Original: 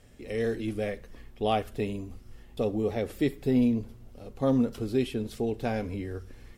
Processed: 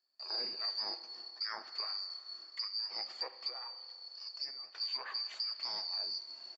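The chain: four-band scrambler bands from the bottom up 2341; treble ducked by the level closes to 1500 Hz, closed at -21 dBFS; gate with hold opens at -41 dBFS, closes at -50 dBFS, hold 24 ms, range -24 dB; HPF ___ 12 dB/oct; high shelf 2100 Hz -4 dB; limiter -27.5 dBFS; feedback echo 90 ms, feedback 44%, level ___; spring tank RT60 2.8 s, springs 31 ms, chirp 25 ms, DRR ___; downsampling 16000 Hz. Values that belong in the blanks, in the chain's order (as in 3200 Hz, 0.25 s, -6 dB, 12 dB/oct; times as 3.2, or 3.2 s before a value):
520 Hz, -23.5 dB, 12.5 dB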